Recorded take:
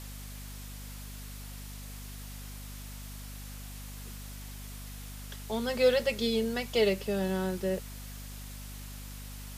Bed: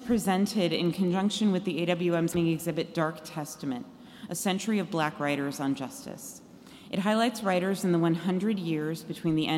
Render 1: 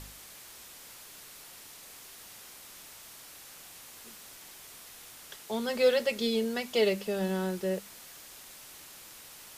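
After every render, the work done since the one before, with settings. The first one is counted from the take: de-hum 50 Hz, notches 5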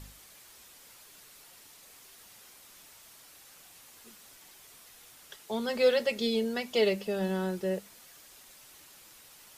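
denoiser 6 dB, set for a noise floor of -50 dBFS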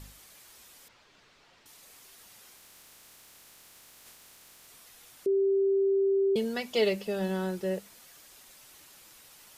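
0.88–1.66 air absorption 170 m; 2.55–4.67 spectral limiter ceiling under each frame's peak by 29 dB; 5.26–6.36 bleep 391 Hz -22 dBFS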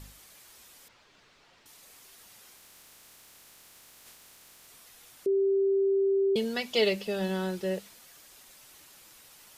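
dynamic EQ 3600 Hz, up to +5 dB, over -55 dBFS, Q 0.86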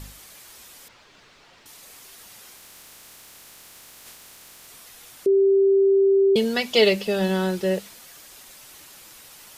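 gain +8 dB

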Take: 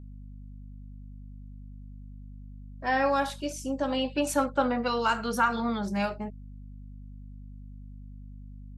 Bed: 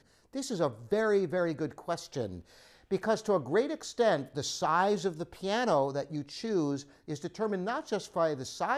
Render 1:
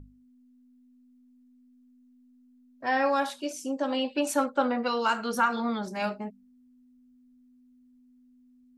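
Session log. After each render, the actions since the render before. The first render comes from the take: notches 50/100/150/200 Hz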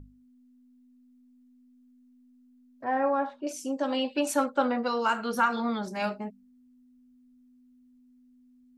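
2.84–3.47 LPF 1200 Hz; 4.79–5.37 bell 2100 Hz -> 7900 Hz -7.5 dB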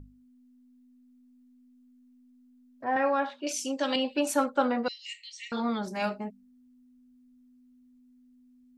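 2.96–3.96 weighting filter D; 4.88–5.52 brick-wall FIR band-pass 1800–8500 Hz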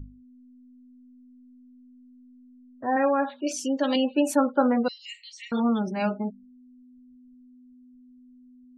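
spectral gate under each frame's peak -25 dB strong; low shelf 470 Hz +9 dB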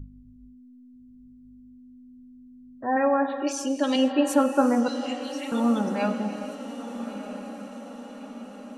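diffused feedback echo 1.274 s, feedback 56%, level -12 dB; non-linear reverb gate 0.49 s flat, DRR 8.5 dB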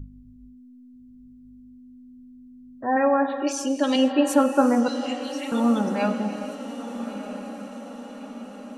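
gain +2 dB

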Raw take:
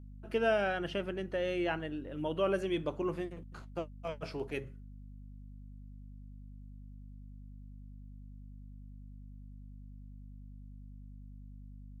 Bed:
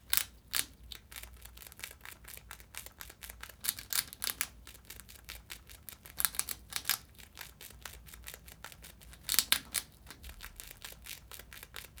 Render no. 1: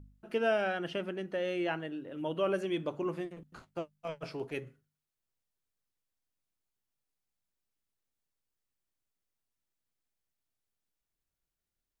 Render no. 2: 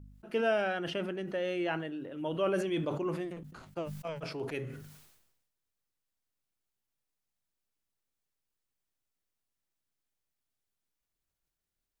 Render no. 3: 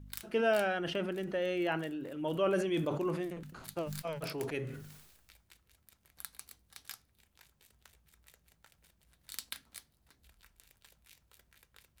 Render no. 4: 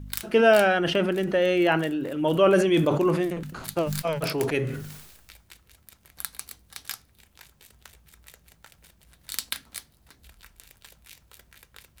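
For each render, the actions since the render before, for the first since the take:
de-hum 50 Hz, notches 5
sustainer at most 53 dB/s
add bed -15 dB
gain +11.5 dB

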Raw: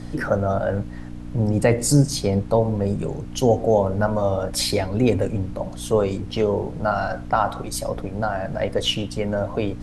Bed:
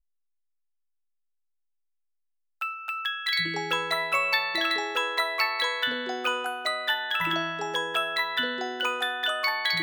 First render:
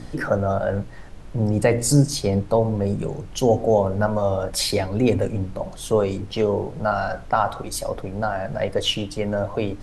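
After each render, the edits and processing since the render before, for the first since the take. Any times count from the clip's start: de-hum 60 Hz, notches 5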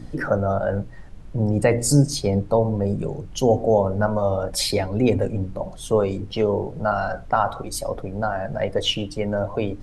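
denoiser 7 dB, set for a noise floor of -38 dBFS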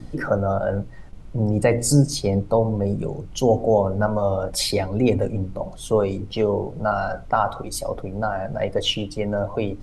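notch 1700 Hz, Q 11; gate with hold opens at -33 dBFS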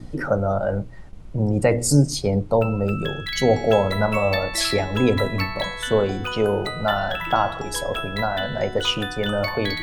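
add bed -2.5 dB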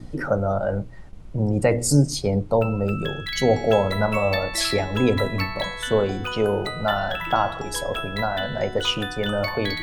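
gain -1 dB

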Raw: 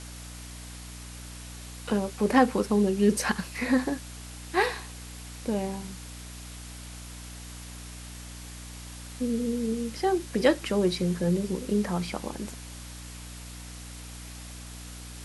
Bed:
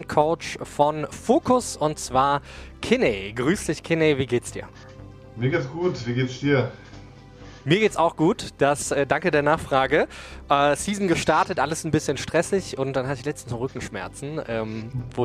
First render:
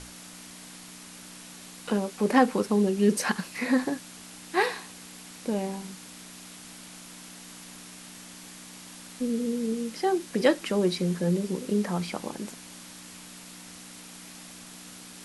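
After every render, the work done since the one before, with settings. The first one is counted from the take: notches 60/120 Hz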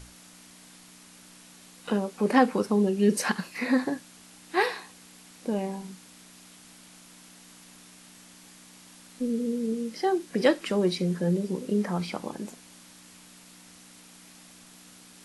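noise print and reduce 6 dB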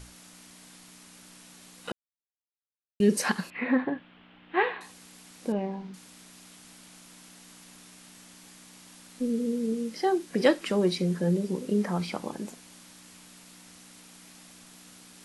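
1.92–3 mute; 3.5–4.81 elliptic low-pass 3200 Hz, stop band 60 dB; 5.52–5.94 air absorption 250 m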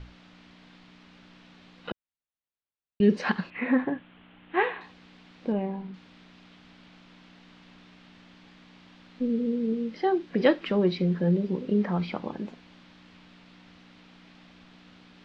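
LPF 3800 Hz 24 dB/oct; low shelf 150 Hz +5.5 dB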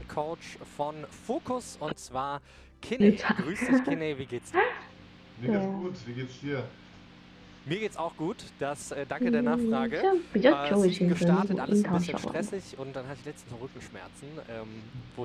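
add bed -13 dB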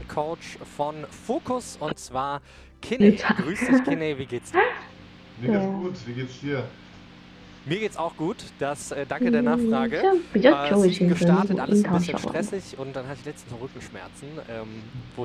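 gain +5 dB

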